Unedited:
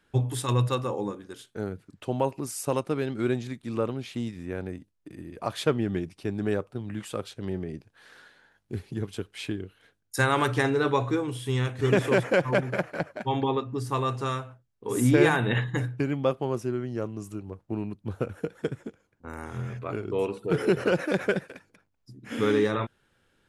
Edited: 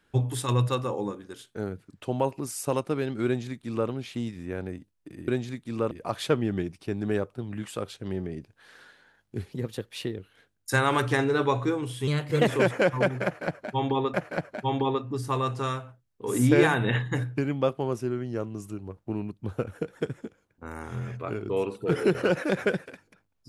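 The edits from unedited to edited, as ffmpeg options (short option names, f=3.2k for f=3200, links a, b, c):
-filter_complex "[0:a]asplit=8[a][b][c][d][e][f][g][h];[a]atrim=end=5.282[i];[b]atrim=start=3.258:end=3.892[j];[c]atrim=start=5.278:end=8.894[k];[d]atrim=start=8.89:end=9.64,asetpts=PTS-STARTPTS,asetrate=49833,aresample=44100[l];[e]atrim=start=9.636:end=11.534[m];[f]atrim=start=11.53:end=12,asetpts=PTS-STARTPTS,asetrate=51156,aresample=44100,atrim=end_sample=17868,asetpts=PTS-STARTPTS[n];[g]atrim=start=11.996:end=13.662[o];[h]atrim=start=12.758[p];[i][j]acrossfade=d=0.004:c1=hsin:c2=hsin[q];[q][k]acrossfade=d=0.004:c1=hsin:c2=hsin[r];[r][l]acrossfade=d=0.004:c1=hsin:c2=hsin[s];[s][m]acrossfade=d=0.004:c1=hsin:c2=hsin[t];[t][n]acrossfade=d=0.004:c1=hsin:c2=hsin[u];[u][o]acrossfade=d=0.004:c1=hsin:c2=hsin[v];[v][p]acrossfade=d=0.004:c1=hsin:c2=hsin"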